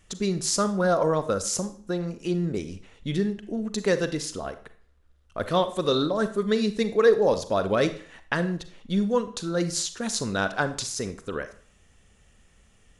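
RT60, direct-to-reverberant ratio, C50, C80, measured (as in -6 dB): 0.45 s, 10.5 dB, 13.0 dB, 17.5 dB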